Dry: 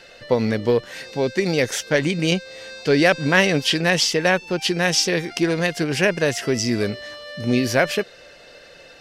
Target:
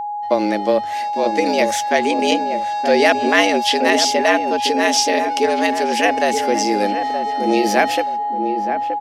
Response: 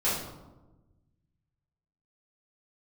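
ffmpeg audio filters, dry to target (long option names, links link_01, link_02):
-filter_complex "[0:a]agate=range=-46dB:threshold=-37dB:ratio=16:detection=peak,afreqshift=98,aeval=exprs='val(0)+0.0631*sin(2*PI*830*n/s)':channel_layout=same,asplit=2[link_01][link_02];[link_02]adelay=924,lowpass=frequency=840:poles=1,volume=-5.5dB,asplit=2[link_03][link_04];[link_04]adelay=924,lowpass=frequency=840:poles=1,volume=0.37,asplit=2[link_05][link_06];[link_06]adelay=924,lowpass=frequency=840:poles=1,volume=0.37,asplit=2[link_07][link_08];[link_08]adelay=924,lowpass=frequency=840:poles=1,volume=0.37[link_09];[link_01][link_03][link_05][link_07][link_09]amix=inputs=5:normalize=0,volume=1.5dB"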